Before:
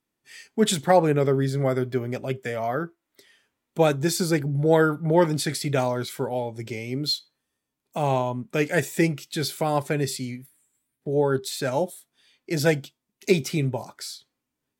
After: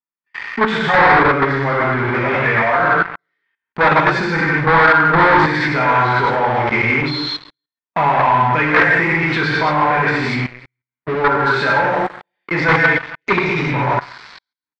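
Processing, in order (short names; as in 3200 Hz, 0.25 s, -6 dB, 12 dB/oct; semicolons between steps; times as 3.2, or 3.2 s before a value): on a send: feedback echo 0.136 s, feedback 29%, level -15 dB; on the sum: non-linear reverb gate 0.25 s flat, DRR -6.5 dB; level quantiser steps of 14 dB; sample leveller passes 5; band shelf 1400 Hz +13.5 dB; sample leveller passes 1; LPF 4100 Hz 24 dB/oct; gain -12.5 dB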